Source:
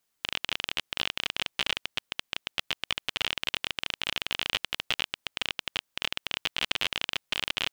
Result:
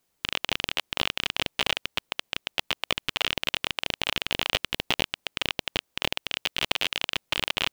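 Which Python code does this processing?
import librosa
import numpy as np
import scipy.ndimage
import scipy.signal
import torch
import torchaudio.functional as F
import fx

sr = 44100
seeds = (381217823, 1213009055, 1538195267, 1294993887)

p1 = fx.highpass(x, sr, hz=1200.0, slope=6, at=(6.14, 7.1))
p2 = fx.sample_hold(p1, sr, seeds[0], rate_hz=1800.0, jitter_pct=0)
p3 = p1 + (p2 * 10.0 ** (-8.5 / 20.0))
y = p3 * 10.0 ** (2.5 / 20.0)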